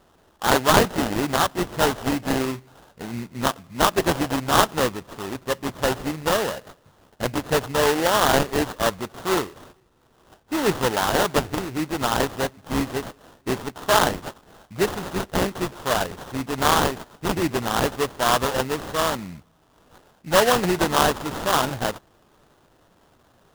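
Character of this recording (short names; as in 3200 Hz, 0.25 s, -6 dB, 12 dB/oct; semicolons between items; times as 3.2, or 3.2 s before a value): aliases and images of a low sample rate 2300 Hz, jitter 20%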